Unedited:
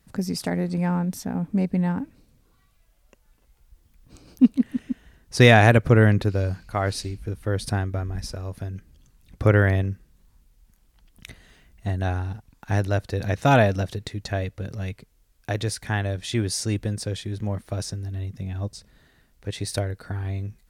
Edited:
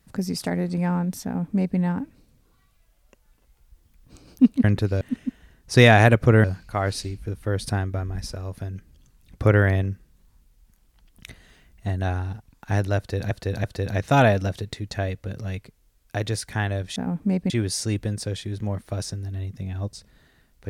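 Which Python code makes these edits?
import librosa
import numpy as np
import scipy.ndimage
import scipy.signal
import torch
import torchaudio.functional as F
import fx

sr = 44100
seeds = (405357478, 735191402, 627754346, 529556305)

y = fx.edit(x, sr, fx.duplicate(start_s=1.24, length_s=0.54, to_s=16.3),
    fx.move(start_s=6.07, length_s=0.37, to_s=4.64),
    fx.repeat(start_s=12.98, length_s=0.33, count=3), tone=tone)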